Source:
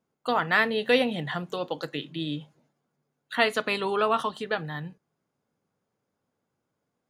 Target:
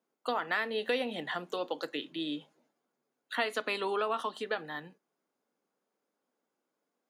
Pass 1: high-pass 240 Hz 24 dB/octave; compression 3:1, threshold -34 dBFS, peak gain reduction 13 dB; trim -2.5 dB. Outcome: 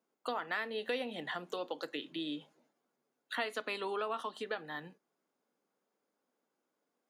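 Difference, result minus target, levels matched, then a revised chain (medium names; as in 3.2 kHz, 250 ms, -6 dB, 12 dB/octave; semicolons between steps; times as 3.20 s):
compression: peak gain reduction +5 dB
high-pass 240 Hz 24 dB/octave; compression 3:1, threshold -26.5 dBFS, peak gain reduction 8 dB; trim -2.5 dB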